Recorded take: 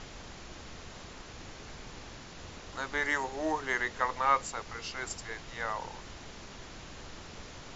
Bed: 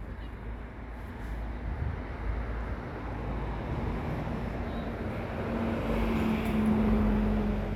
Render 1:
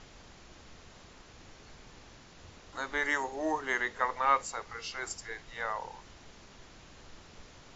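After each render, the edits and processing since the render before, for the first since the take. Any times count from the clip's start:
noise reduction from a noise print 7 dB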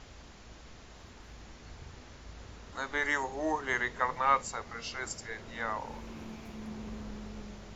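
mix in bed −16.5 dB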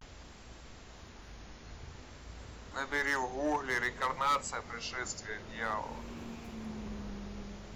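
pitch vibrato 0.52 Hz 76 cents
gain into a clipping stage and back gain 25 dB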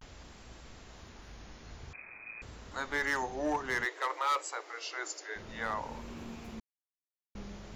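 0:01.93–0:02.42: voice inversion scrambler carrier 2,500 Hz
0:03.85–0:05.36: Chebyshev high-pass filter 300 Hz, order 10
0:06.60–0:07.35: silence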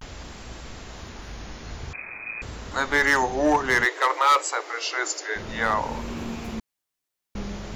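level +12 dB

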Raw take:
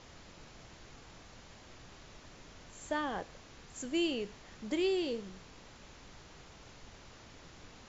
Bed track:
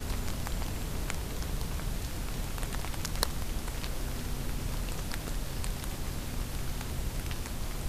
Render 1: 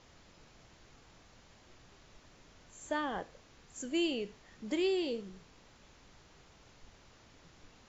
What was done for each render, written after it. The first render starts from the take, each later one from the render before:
noise reduction from a noise print 6 dB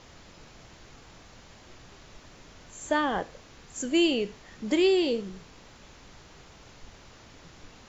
level +9 dB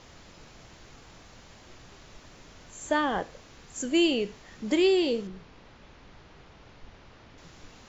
0:05.27–0:07.38: high-frequency loss of the air 160 metres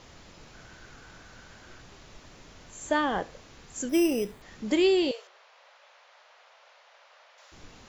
0:00.53–0:01.81: parametric band 1,500 Hz +12 dB 0.23 octaves
0:03.89–0:04.42: bad sample-rate conversion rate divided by 8×, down filtered, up hold
0:05.11–0:07.52: elliptic high-pass filter 560 Hz, stop band 60 dB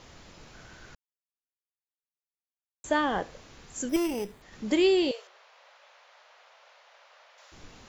0:00.95–0:02.84: silence
0:03.96–0:04.53: tube saturation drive 23 dB, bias 0.65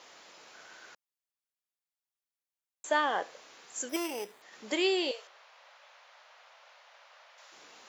high-pass filter 530 Hz 12 dB per octave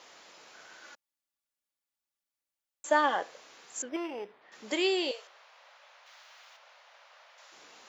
0:00.83–0:03.16: comb filter 3.5 ms
0:03.82–0:04.52: high-frequency loss of the air 330 metres
0:06.06–0:06.57: spectral tilt +3 dB per octave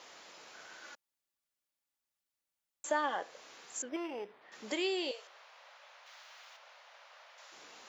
downward compressor 1.5 to 1, threshold −41 dBFS, peak gain reduction 8 dB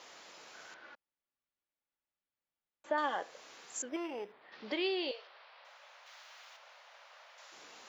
0:00.74–0:02.98: high-frequency loss of the air 300 metres
0:04.32–0:05.65: Butterworth low-pass 4,900 Hz 48 dB per octave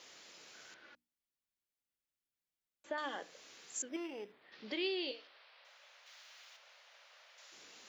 parametric band 890 Hz −9.5 dB 1.8 octaves
mains-hum notches 60/120/180/240/300 Hz

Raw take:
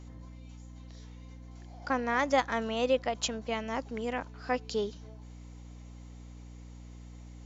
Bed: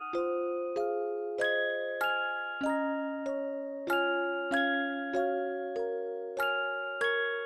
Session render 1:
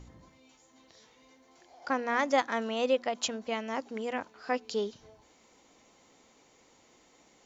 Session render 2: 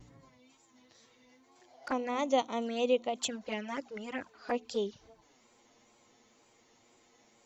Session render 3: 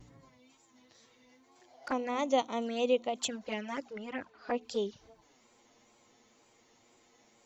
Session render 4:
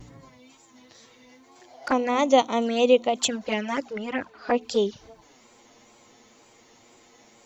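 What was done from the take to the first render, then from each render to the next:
hum removal 60 Hz, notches 5
tape wow and flutter 71 cents; flanger swept by the level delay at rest 9.4 ms, full sweep at −27.5 dBFS
0:03.93–0:04.61: high-frequency loss of the air 110 metres
level +10 dB

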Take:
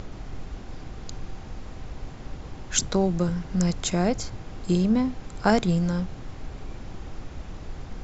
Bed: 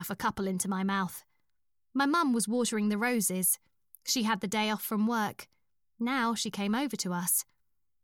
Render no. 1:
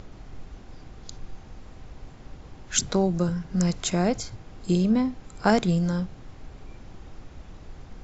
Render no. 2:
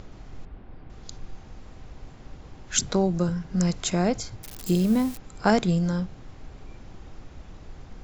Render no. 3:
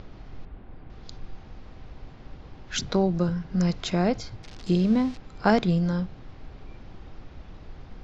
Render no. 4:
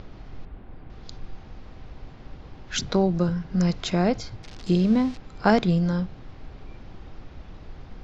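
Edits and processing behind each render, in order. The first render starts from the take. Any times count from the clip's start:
noise reduction from a noise print 6 dB
0:00.45–0:00.90: high-frequency loss of the air 390 metres; 0:04.43–0:05.21: spike at every zero crossing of −26 dBFS
low-pass filter 5,100 Hz 24 dB per octave
level +1.5 dB

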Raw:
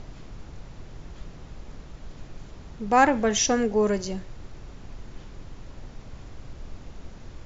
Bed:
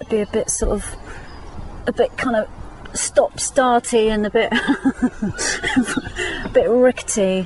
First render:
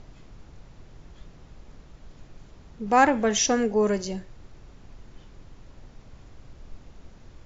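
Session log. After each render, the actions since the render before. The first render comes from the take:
noise reduction from a noise print 6 dB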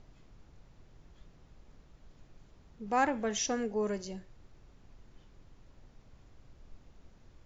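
level −10 dB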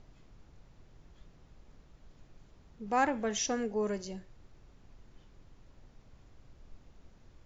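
no processing that can be heard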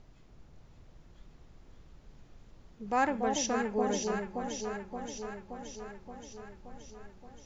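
delay that swaps between a low-pass and a high-pass 287 ms, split 870 Hz, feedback 81%, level −3.5 dB

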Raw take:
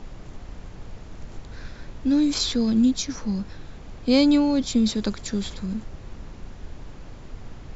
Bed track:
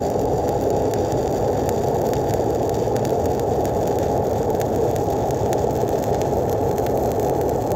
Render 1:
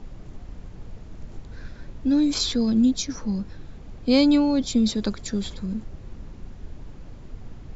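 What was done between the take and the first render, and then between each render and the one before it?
broadband denoise 6 dB, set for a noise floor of −42 dBFS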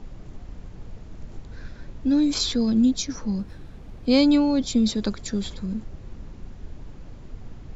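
0:03.39–0:04.06: windowed peak hold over 3 samples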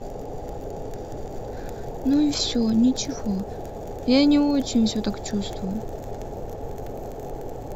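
mix in bed track −15 dB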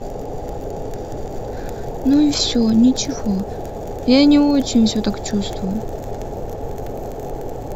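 level +6 dB
brickwall limiter −2 dBFS, peak gain reduction 1.5 dB

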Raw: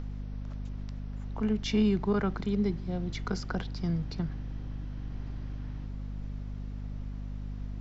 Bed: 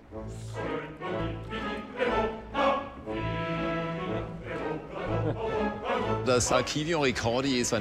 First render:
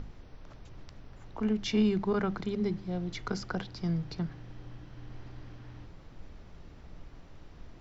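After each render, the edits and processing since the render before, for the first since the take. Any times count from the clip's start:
mains-hum notches 50/100/150/200/250 Hz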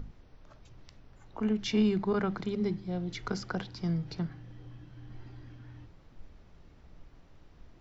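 noise reduction from a noise print 6 dB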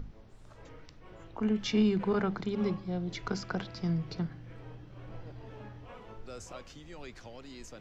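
mix in bed −21 dB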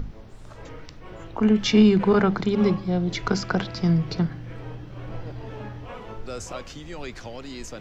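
level +10.5 dB

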